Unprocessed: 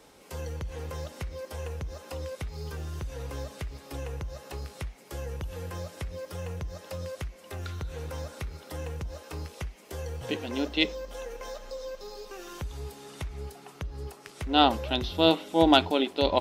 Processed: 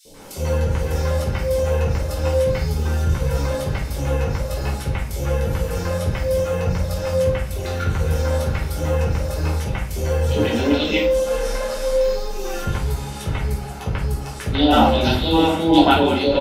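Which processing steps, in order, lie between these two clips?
0:11.14–0:11.99: linear delta modulator 64 kbit/s, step −40 dBFS
in parallel at +1 dB: compressor whose output falls as the input rises −30 dBFS, ratio −0.5
on the sum: three-band delay without the direct sound highs, lows, mids 50/140 ms, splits 610/3,300 Hz
rectangular room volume 420 cubic metres, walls furnished, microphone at 5.1 metres
level −1 dB

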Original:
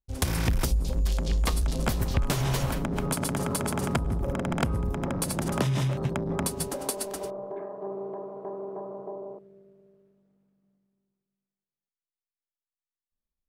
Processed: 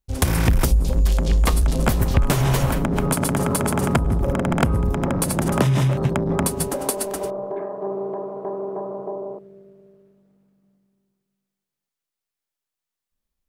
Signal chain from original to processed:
dynamic equaliser 4,600 Hz, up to −5 dB, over −48 dBFS, Q 0.92
level +8 dB

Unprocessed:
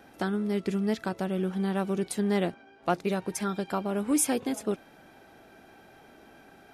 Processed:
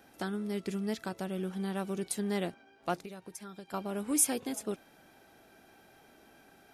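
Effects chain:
high-shelf EQ 4,200 Hz +8.5 dB
0:02.99–0:03.74: downward compressor 5 to 1, threshold −37 dBFS, peak gain reduction 12.5 dB
level −6.5 dB

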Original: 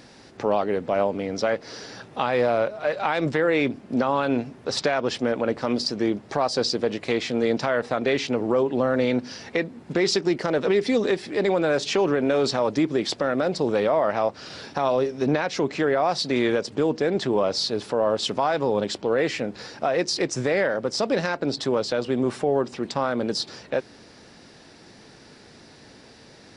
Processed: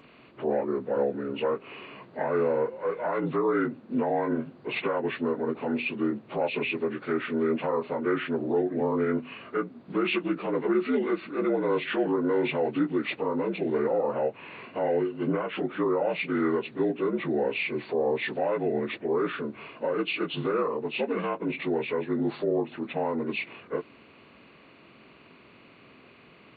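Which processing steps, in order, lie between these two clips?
partials spread apart or drawn together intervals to 78%
level −3 dB

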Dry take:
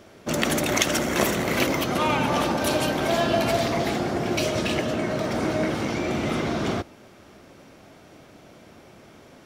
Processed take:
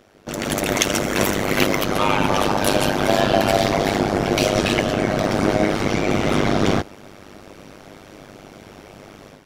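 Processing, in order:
amplitude modulation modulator 100 Hz, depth 95%
automatic gain control gain up to 11.5 dB

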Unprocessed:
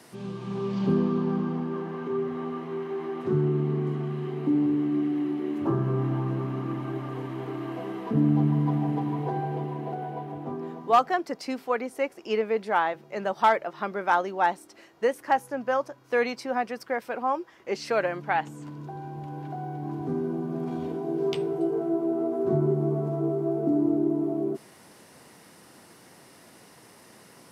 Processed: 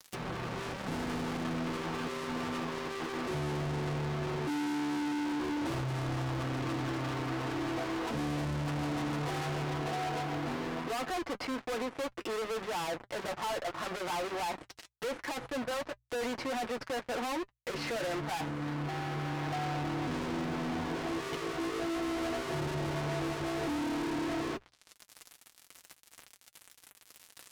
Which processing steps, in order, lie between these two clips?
fuzz pedal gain 42 dB, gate −44 dBFS
treble cut that deepens with the level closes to 1,600 Hz, closed at −17 dBFS
tilt shelving filter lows −3 dB, about 1,100 Hz
gain into a clipping stage and back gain 27.5 dB
mains-hum notches 60/120 Hz
notch comb filter 200 Hz
level −5 dB

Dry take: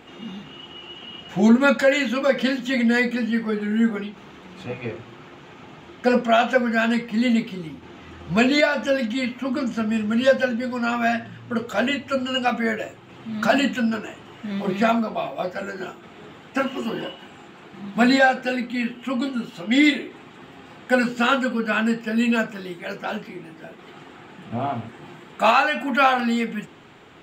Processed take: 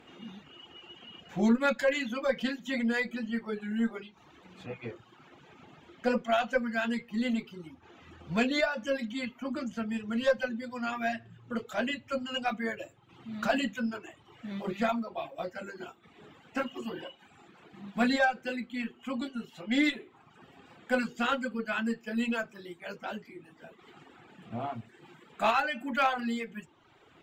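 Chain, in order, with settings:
harmonic generator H 4 −26 dB, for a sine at −5 dBFS
wave folding −6 dBFS
reverb reduction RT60 0.89 s
level −9 dB

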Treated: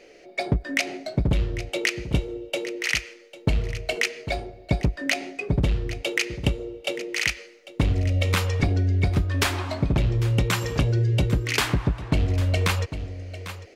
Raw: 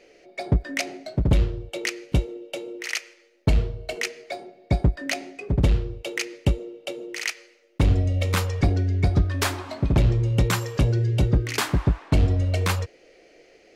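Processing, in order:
dynamic equaliser 2,700 Hz, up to +5 dB, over −40 dBFS, Q 1.1
single-tap delay 798 ms −17 dB
downward compressor, threshold −22 dBFS, peak gain reduction 8.5 dB
level +3.5 dB

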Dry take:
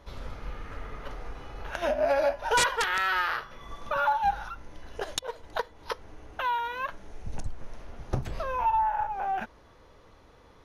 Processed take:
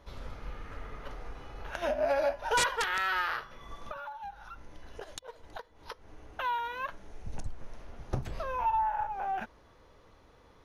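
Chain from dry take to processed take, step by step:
0:03.91–0:06.22: downward compressor 10 to 1, threshold −36 dBFS, peak gain reduction 15.5 dB
level −3.5 dB

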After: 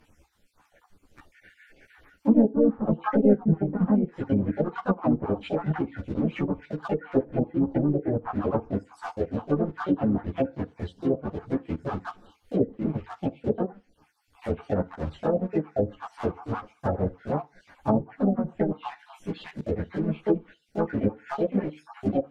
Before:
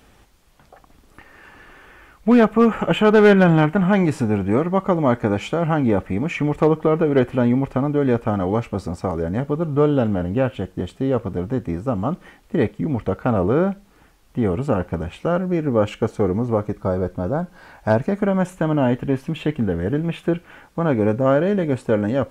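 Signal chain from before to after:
time-frequency cells dropped at random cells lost 57%
in parallel at −6 dB: centre clipping without the shift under −26 dBFS
on the sum: pitch-shifted copies added +4 semitones −6 dB, +5 semitones −12 dB
feedback delay network reverb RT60 0.31 s, low-frequency decay 1×, high-frequency decay 0.8×, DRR 15 dB
treble cut that deepens with the level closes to 390 Hz, closed at −10.5 dBFS
string-ensemble chorus
level −4.5 dB

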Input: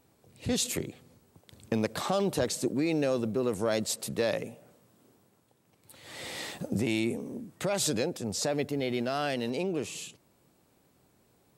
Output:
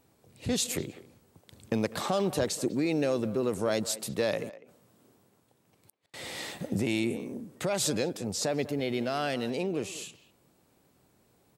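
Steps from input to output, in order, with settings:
0:04.49–0:06.14: gate with flip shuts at −41 dBFS, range −41 dB
far-end echo of a speakerphone 200 ms, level −15 dB

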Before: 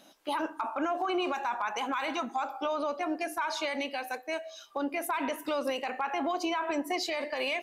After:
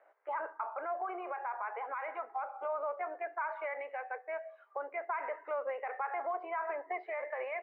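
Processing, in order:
Chebyshev band-pass filter 420–2,100 Hz, order 4
0:00.63–0:02.69: dynamic equaliser 1,400 Hz, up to −3 dB, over −40 dBFS, Q 0.89
level −3.5 dB

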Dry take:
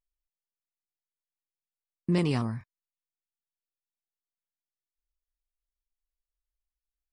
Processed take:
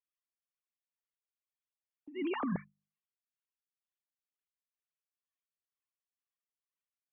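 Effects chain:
three sine waves on the formant tracks
mains-hum notches 50/100/150/200/250 Hz
shaped tremolo triangle 2.1 Hz, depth 75%
compressor whose output falls as the input rises −35 dBFS, ratio −0.5

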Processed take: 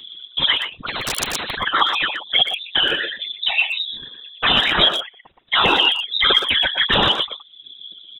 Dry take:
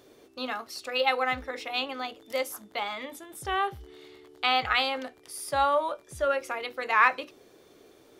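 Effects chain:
spectral envelope exaggerated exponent 2
0:03.01–0:03.80: downward compressor 8 to 1, threshold −34 dBFS, peak gain reduction 11 dB
0:04.88–0:05.40: Bessel high-pass filter 1,200 Hz, order 2
reverb reduction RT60 1.2 s
sine wavefolder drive 19 dB, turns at −8 dBFS
flanger swept by the level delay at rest 5.9 ms, full sweep at −9 dBFS
random phases in short frames
voice inversion scrambler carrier 3,800 Hz
far-end echo of a speakerphone 120 ms, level −6 dB
0:00.86–0:01.58: every bin compressed towards the loudest bin 10 to 1
level −1 dB

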